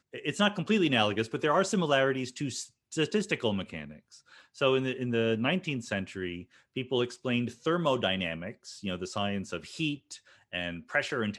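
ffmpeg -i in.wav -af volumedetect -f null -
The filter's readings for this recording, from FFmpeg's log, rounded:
mean_volume: -30.8 dB
max_volume: -11.2 dB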